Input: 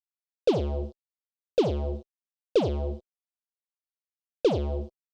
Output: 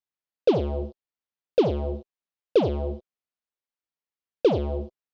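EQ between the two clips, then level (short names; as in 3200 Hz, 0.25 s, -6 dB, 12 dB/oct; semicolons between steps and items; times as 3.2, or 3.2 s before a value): air absorption 140 m; low shelf 62 Hz -7.5 dB; +3.5 dB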